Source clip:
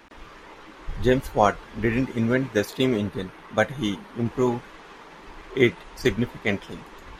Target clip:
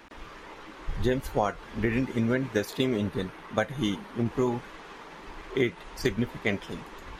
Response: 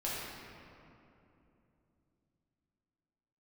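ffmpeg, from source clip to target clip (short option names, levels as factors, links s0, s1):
-af "acompressor=threshold=0.0794:ratio=5"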